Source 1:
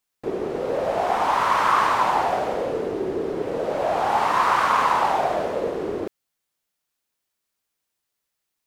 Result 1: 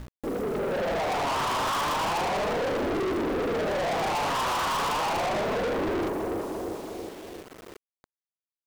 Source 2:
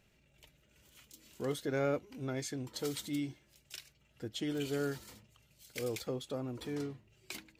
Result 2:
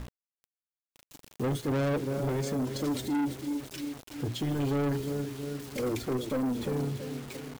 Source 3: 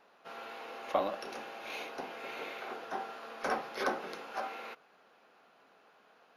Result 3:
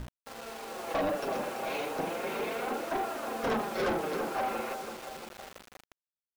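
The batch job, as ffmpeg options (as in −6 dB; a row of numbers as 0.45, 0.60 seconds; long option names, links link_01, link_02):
-af "flanger=delay=2.7:depth=5.4:regen=13:speed=0.33:shape=triangular,dynaudnorm=framelen=180:gausssize=9:maxgain=9.5dB,lowpass=frequency=1200:poles=1,aecho=1:1:338|676|1014|1352|1690|2028:0.251|0.138|0.076|0.0418|0.023|0.0126,tremolo=f=25:d=0.333,aeval=exprs='val(0)+0.00447*(sin(2*PI*60*n/s)+sin(2*PI*2*60*n/s)/2+sin(2*PI*3*60*n/s)/3+sin(2*PI*4*60*n/s)/4+sin(2*PI*5*60*n/s)/5)':channel_layout=same,asoftclip=type=hard:threshold=-23dB,crystalizer=i=2.5:c=0,lowshelf=frequency=430:gain=9.5,bandreject=frequency=60:width_type=h:width=6,bandreject=frequency=120:width_type=h:width=6,bandreject=frequency=180:width_type=h:width=6,bandreject=frequency=240:width_type=h:width=6,bandreject=frequency=300:width_type=h:width=6,bandreject=frequency=360:width_type=h:width=6,bandreject=frequency=420:width_type=h:width=6,acrusher=bits=7:mix=0:aa=0.000001,asoftclip=type=tanh:threshold=-29.5dB,volume=3.5dB"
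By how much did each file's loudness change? −5.5, +7.0, +5.0 LU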